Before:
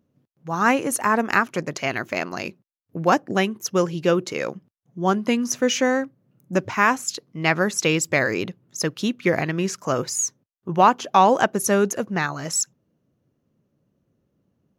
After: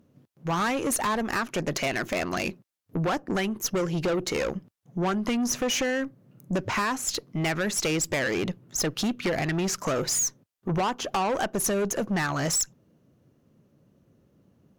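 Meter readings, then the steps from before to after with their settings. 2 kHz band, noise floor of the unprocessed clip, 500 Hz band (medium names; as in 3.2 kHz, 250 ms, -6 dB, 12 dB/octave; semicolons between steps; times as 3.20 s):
-6.5 dB, -73 dBFS, -6.0 dB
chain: compression 4:1, threshold -25 dBFS, peak gain reduction 13 dB; valve stage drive 30 dB, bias 0.3; trim +8 dB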